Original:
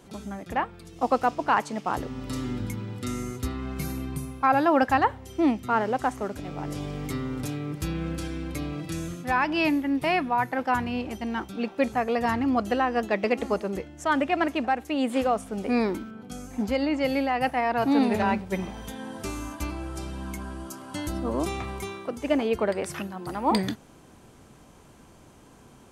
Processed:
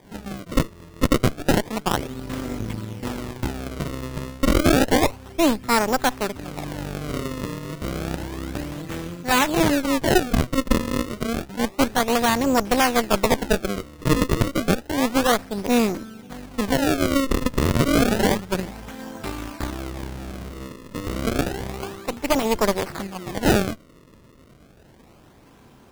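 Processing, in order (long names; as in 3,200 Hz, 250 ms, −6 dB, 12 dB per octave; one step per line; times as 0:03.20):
harmonic generator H 6 −10 dB, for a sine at −8.5 dBFS
sample-and-hold swept by an LFO 32×, swing 160% 0.3 Hz
level +1.5 dB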